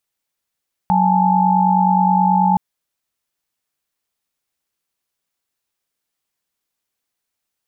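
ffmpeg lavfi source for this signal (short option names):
-f lavfi -i "aevalsrc='0.158*(sin(2*PI*185*t)+sin(2*PI*830.61*t)+sin(2*PI*880*t))':d=1.67:s=44100"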